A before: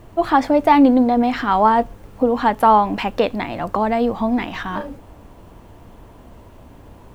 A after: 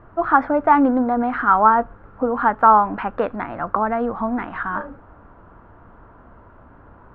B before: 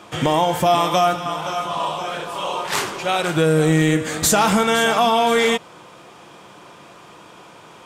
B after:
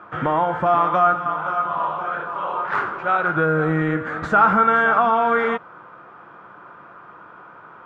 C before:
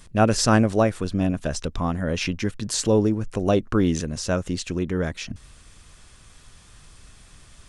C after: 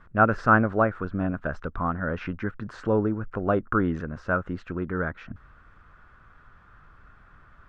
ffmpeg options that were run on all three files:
-af "lowpass=f=1.4k:t=q:w=4.7,volume=-5dB"

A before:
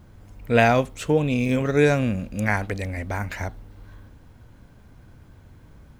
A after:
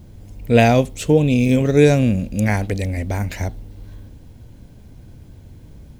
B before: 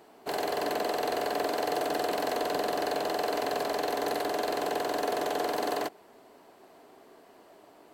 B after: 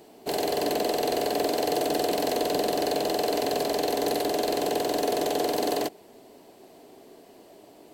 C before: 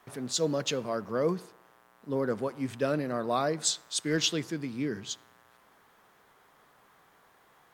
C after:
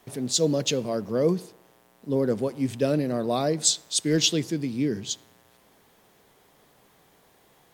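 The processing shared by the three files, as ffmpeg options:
-af "equalizer=f=1.3k:w=0.96:g=-12.5,volume=7.5dB"

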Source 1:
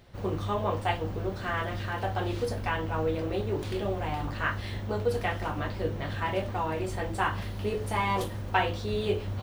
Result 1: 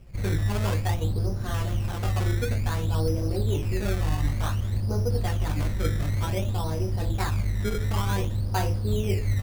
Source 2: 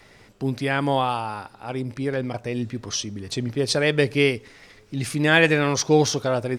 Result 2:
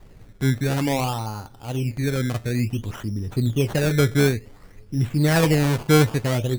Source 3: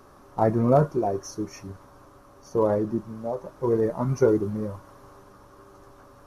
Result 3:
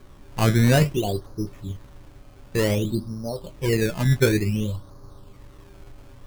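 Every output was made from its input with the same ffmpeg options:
-af "aemphasis=mode=reproduction:type=riaa,flanger=delay=5.2:depth=6.1:regen=-69:speed=0.52:shape=triangular,acrusher=samples=16:mix=1:aa=0.000001:lfo=1:lforange=16:lforate=0.55"

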